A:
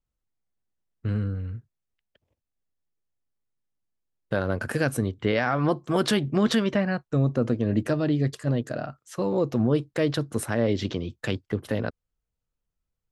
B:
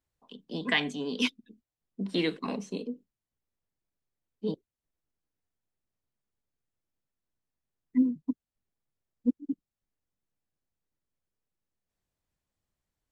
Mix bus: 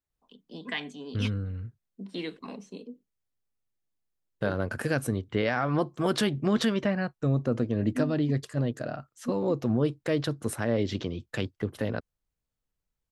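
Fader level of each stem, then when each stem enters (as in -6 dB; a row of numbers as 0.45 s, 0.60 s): -3.0 dB, -7.0 dB; 0.10 s, 0.00 s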